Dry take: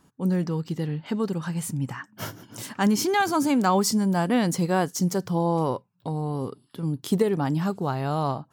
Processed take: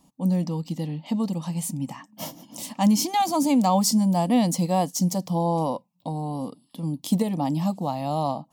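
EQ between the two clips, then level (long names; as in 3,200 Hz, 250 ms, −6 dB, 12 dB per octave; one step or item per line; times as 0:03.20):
phaser with its sweep stopped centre 400 Hz, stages 6
+3.0 dB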